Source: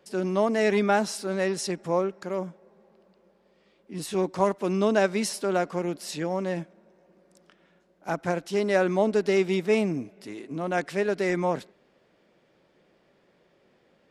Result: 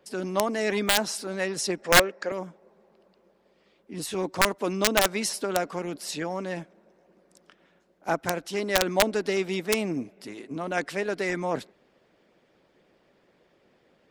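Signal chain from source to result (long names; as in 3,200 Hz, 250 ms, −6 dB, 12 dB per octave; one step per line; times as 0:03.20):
0:01.82–0:02.32: loudspeaker in its box 220–8,400 Hz, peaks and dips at 530 Hz +9 dB, 1,800 Hz +10 dB, 2,500 Hz +4 dB, 4,800 Hz +4 dB
wrap-around overflow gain 11.5 dB
harmonic and percussive parts rebalanced harmonic −8 dB
level +3.5 dB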